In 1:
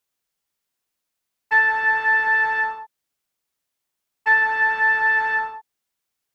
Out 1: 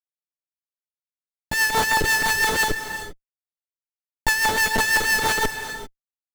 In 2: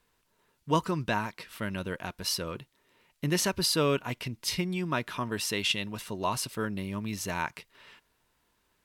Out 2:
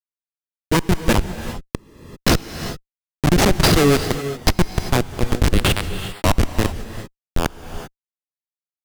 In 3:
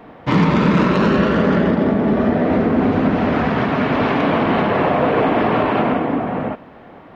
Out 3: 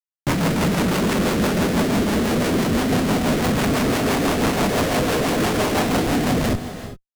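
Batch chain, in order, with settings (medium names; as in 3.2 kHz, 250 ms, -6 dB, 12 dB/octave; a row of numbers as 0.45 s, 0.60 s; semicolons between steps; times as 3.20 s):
Schmitt trigger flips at -24 dBFS; rotary cabinet horn 6 Hz; gated-style reverb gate 420 ms rising, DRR 10 dB; normalise loudness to -20 LUFS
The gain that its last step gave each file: +5.5 dB, +21.5 dB, -1.0 dB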